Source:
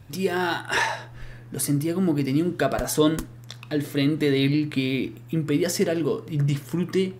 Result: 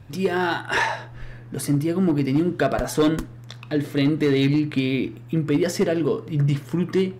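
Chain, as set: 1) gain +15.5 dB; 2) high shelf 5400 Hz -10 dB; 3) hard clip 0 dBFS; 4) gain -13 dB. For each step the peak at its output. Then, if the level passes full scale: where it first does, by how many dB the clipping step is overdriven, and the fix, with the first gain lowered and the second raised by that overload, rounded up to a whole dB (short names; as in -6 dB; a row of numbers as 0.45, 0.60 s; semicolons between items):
+6.5, +6.5, 0.0, -13.0 dBFS; step 1, 6.5 dB; step 1 +8.5 dB, step 4 -6 dB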